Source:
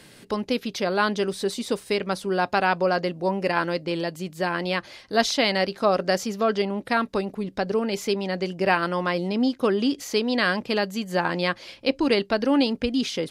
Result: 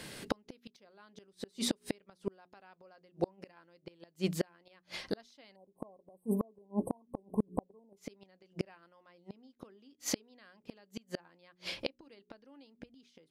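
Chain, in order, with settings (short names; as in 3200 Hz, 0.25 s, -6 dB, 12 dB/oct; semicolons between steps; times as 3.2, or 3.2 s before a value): notches 60/120/180/240/300/360/420 Hz; spectral delete 5.56–7.97, 1100–8000 Hz; flipped gate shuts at -20 dBFS, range -39 dB; gain +2.5 dB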